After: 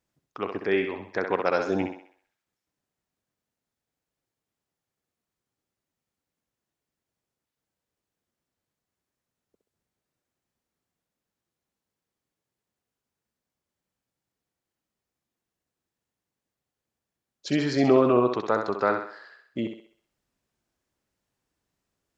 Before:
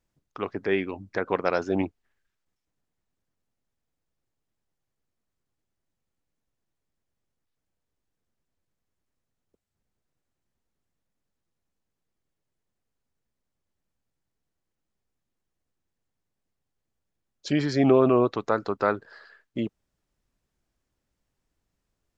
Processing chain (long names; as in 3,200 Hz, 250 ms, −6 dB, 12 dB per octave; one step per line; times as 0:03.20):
high-pass filter 120 Hz 6 dB per octave
on a send: feedback echo with a high-pass in the loop 65 ms, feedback 47%, high-pass 310 Hz, level −5.5 dB